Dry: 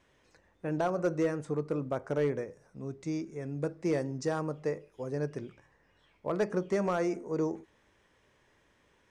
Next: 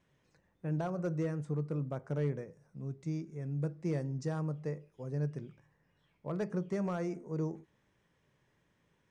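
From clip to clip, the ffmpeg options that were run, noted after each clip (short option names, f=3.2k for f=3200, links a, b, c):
-af "equalizer=f=150:w=1.5:g=12.5,volume=-8.5dB"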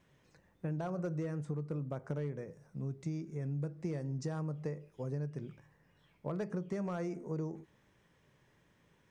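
-af "acompressor=threshold=-39dB:ratio=6,volume=4.5dB"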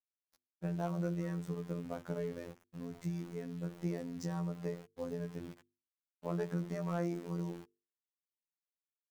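-af "aeval=exprs='val(0)*gte(abs(val(0)),0.00282)':c=same,afftfilt=real='hypot(re,im)*cos(PI*b)':imag='0':win_size=2048:overlap=0.75,bandreject=f=50:t=h:w=6,bandreject=f=100:t=h:w=6,bandreject=f=150:t=h:w=6,bandreject=f=200:t=h:w=6,bandreject=f=250:t=h:w=6,bandreject=f=300:t=h:w=6,bandreject=f=350:t=h:w=6,bandreject=f=400:t=h:w=6,bandreject=f=450:t=h:w=6,volume=4dB"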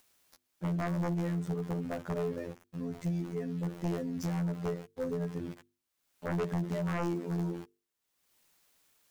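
-af "acompressor=mode=upward:threshold=-59dB:ratio=2.5,aeval=exprs='0.0891*sin(PI/2*3.16*val(0)/0.0891)':c=same,volume=-6.5dB"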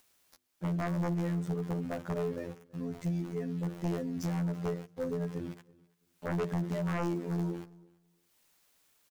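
-af "aecho=1:1:331|662:0.0631|0.012"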